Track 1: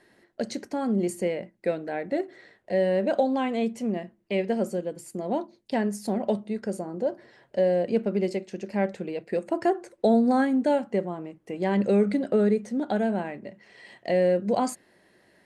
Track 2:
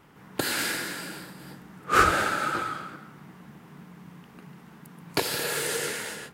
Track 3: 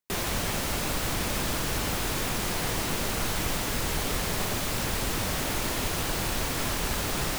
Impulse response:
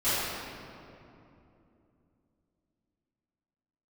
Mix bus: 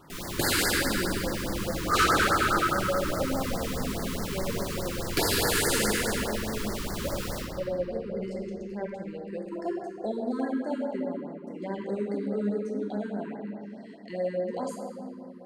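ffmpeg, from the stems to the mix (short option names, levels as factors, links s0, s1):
-filter_complex "[0:a]volume=0.237,asplit=2[s0][s1];[s1]volume=0.282[s2];[1:a]volume=1.19,asplit=2[s3][s4];[s4]volume=0.2[s5];[2:a]asoftclip=type=tanh:threshold=0.0398,volume=0.266,asplit=2[s6][s7];[s7]volume=0.668[s8];[3:a]atrim=start_sample=2205[s9];[s2][s5][s8]amix=inputs=3:normalize=0[s10];[s10][s9]afir=irnorm=-1:irlink=0[s11];[s0][s3][s6][s11]amix=inputs=4:normalize=0,asoftclip=type=hard:threshold=0.119,afftfilt=real='re*(1-between(b*sr/1024,620*pow(3100/620,0.5+0.5*sin(2*PI*4.8*pts/sr))/1.41,620*pow(3100/620,0.5+0.5*sin(2*PI*4.8*pts/sr))*1.41))':imag='im*(1-between(b*sr/1024,620*pow(3100/620,0.5+0.5*sin(2*PI*4.8*pts/sr))/1.41,620*pow(3100/620,0.5+0.5*sin(2*PI*4.8*pts/sr))*1.41))':win_size=1024:overlap=0.75"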